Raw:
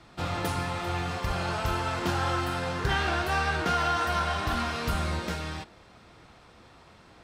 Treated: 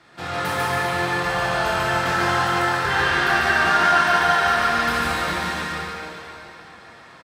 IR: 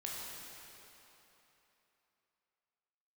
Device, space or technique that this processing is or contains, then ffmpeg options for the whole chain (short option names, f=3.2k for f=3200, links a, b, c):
stadium PA: -filter_complex "[0:a]highpass=f=240:p=1,equalizer=f=1.7k:t=o:w=0.41:g=7,aecho=1:1:145.8|282.8:0.794|0.355[a];[1:a]atrim=start_sample=2205[b];[a][b]afir=irnorm=-1:irlink=0,volume=5dB"